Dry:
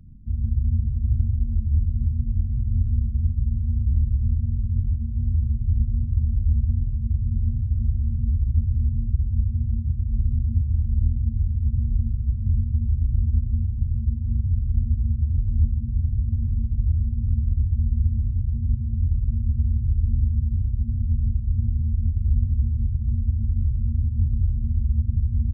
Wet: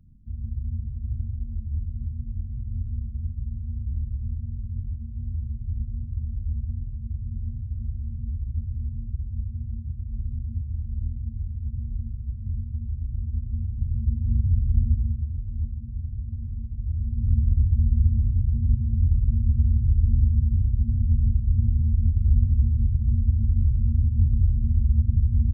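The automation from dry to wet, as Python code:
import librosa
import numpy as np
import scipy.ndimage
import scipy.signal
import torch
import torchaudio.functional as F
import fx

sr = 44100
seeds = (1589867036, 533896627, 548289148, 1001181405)

y = fx.gain(x, sr, db=fx.line((13.26, -8.0), (14.27, 1.0), (14.9, 1.0), (15.37, -8.5), (16.8, -8.5), (17.33, 1.5)))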